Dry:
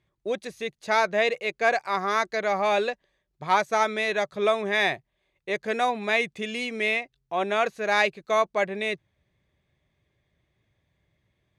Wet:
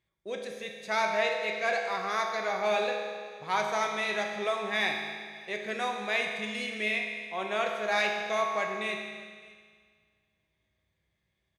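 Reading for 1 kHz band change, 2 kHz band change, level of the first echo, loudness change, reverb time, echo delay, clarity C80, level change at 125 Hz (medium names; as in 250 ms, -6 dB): -5.5 dB, -4.0 dB, -22.5 dB, -5.0 dB, 1.9 s, 600 ms, 4.5 dB, -6.5 dB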